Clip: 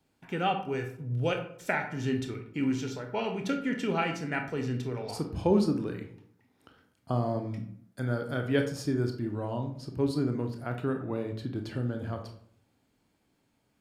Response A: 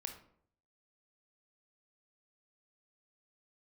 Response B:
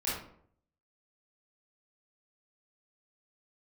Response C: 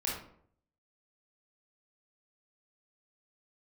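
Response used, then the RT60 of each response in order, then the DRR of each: A; 0.65 s, 0.65 s, 0.65 s; 4.5 dB, -9.5 dB, -5.0 dB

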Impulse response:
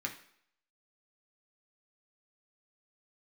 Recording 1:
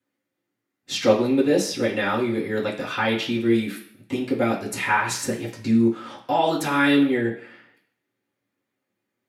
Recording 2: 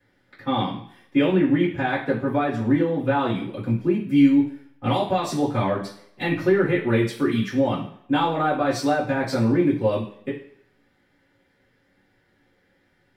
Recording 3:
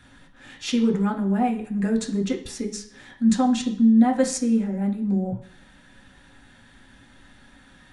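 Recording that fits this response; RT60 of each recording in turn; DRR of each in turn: 3; no single decay rate, no single decay rate, no single decay rate; -6.5 dB, -14.5 dB, 0.0 dB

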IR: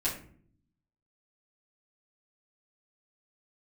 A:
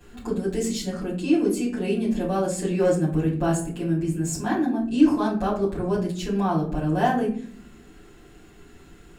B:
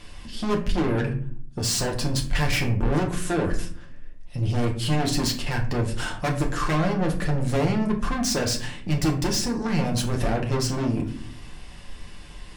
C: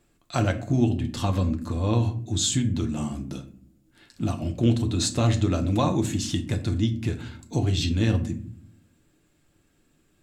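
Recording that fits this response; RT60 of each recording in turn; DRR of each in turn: A; 0.55 s, 0.55 s, 0.55 s; -9.5 dB, 0.0 dB, 4.5 dB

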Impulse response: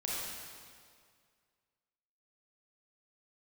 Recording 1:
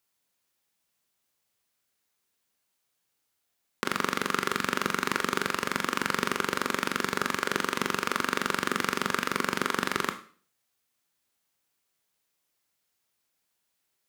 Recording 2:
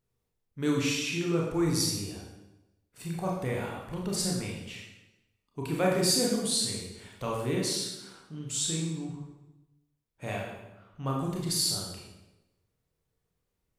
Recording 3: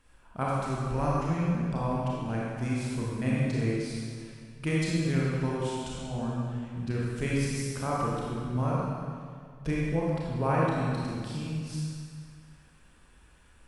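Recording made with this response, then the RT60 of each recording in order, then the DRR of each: 3; 0.45 s, 1.0 s, 2.1 s; 8.0 dB, -2.5 dB, -6.0 dB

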